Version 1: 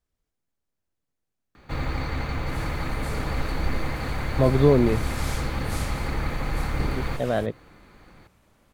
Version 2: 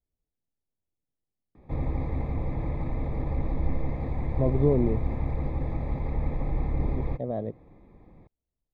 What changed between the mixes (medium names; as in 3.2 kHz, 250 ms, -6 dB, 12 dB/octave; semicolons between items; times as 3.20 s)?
speech -4.5 dB; second sound: muted; master: add boxcar filter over 30 samples